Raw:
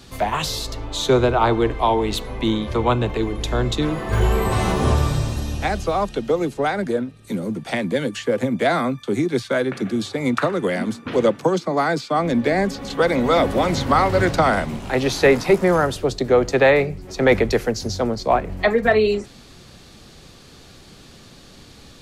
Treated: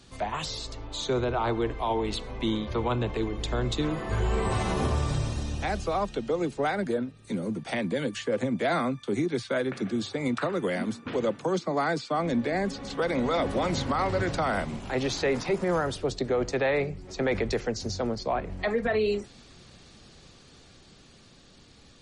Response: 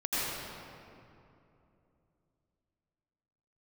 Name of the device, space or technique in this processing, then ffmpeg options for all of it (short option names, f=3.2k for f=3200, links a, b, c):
low-bitrate web radio: -af "dynaudnorm=f=110:g=31:m=5dB,alimiter=limit=-8.5dB:level=0:latency=1:release=36,volume=-9dB" -ar 48000 -c:a libmp3lame -b:a 40k